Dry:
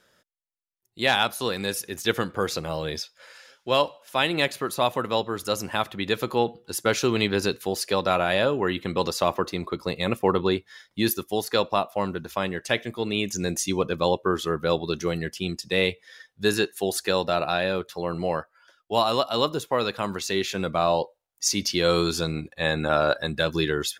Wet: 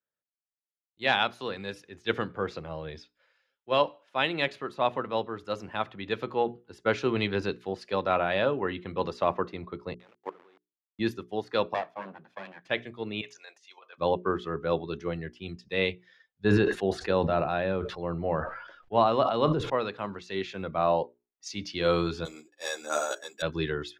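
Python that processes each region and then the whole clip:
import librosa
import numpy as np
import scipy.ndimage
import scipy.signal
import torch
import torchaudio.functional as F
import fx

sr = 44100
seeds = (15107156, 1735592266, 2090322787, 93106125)

y = fx.chain(x, sr, fx.delta_hold(step_db=-24.0),
    fx.highpass(hz=540.0, slope=12),
    fx.level_steps(step_db=23), at=(9.94, 10.99))
y = fx.chain(y, sr, fx.lower_of_two(delay_ms=1.2),
    fx.highpass(hz=150.0, slope=24), at=(11.74, 12.68))
y = fx.chain(y, sr, fx.highpass(hz=710.0, slope=24),
    fx.high_shelf(hz=9900.0, db=-9.5),
    fx.over_compress(threshold_db=-34.0, ratio=-0.5), at=(13.21, 13.98))
y = fx.chain(y, sr, fx.tilt_eq(slope=-1.5),
    fx.sustainer(db_per_s=38.0), at=(16.44, 19.7))
y = fx.chain(y, sr, fx.highpass(hz=300.0, slope=24),
    fx.resample_bad(factor=6, down='none', up='zero_stuff'),
    fx.ensemble(), at=(22.25, 23.42))
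y = scipy.signal.sosfilt(scipy.signal.butter(2, 2800.0, 'lowpass', fs=sr, output='sos'), y)
y = fx.hum_notches(y, sr, base_hz=60, count=7)
y = fx.band_widen(y, sr, depth_pct=70)
y = y * librosa.db_to_amplitude(-4.0)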